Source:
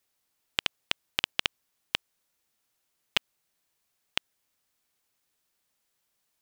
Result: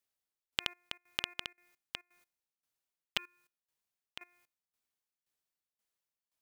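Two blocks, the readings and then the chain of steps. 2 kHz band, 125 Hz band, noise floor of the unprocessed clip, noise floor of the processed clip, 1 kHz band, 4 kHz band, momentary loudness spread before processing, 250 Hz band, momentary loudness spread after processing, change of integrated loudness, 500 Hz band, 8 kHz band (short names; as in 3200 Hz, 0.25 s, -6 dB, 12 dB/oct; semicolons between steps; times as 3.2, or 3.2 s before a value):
-8.0 dB, -8.5 dB, -78 dBFS, under -85 dBFS, -8.0 dB, -8.0 dB, 5 LU, -8.0 dB, 15 LU, -7.5 dB, -8.0 dB, -8.0 dB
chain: de-hum 352.8 Hz, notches 7; level quantiser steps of 19 dB; tremolo saw down 1.9 Hz, depth 85%; gain +7.5 dB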